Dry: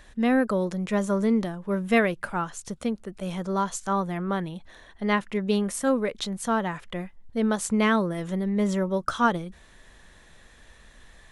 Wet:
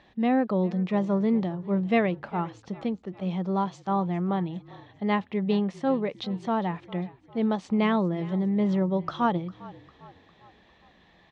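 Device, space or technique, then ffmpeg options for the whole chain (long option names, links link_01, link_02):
frequency-shifting delay pedal into a guitar cabinet: -filter_complex "[0:a]asplit=5[link_01][link_02][link_03][link_04][link_05];[link_02]adelay=402,afreqshift=-38,volume=-20dB[link_06];[link_03]adelay=804,afreqshift=-76,volume=-26.2dB[link_07];[link_04]adelay=1206,afreqshift=-114,volume=-32.4dB[link_08];[link_05]adelay=1608,afreqshift=-152,volume=-38.6dB[link_09];[link_01][link_06][link_07][link_08][link_09]amix=inputs=5:normalize=0,highpass=93,equalizer=frequency=180:width_type=q:width=4:gain=7,equalizer=frequency=330:width_type=q:width=4:gain=6,equalizer=frequency=790:width_type=q:width=4:gain=7,equalizer=frequency=1500:width_type=q:width=4:gain=-8,lowpass=frequency=4300:width=0.5412,lowpass=frequency=4300:width=1.3066,volume=-3.5dB"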